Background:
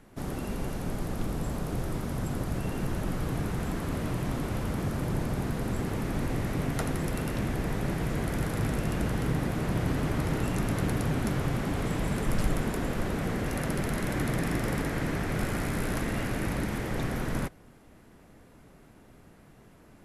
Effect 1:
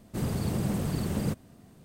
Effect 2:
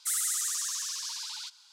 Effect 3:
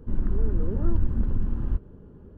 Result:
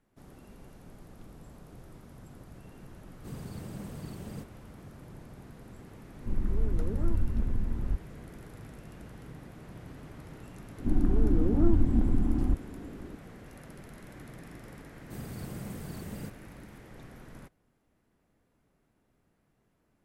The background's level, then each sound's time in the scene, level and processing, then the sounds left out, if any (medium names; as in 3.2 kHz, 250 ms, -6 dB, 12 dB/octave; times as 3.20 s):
background -18 dB
3.10 s: add 1 -12.5 dB
6.19 s: add 3 -4.5 dB
10.78 s: add 3 -1.5 dB + small resonant body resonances 290/730 Hz, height 14 dB
14.96 s: add 1 -11.5 dB + treble shelf 12 kHz +10 dB
not used: 2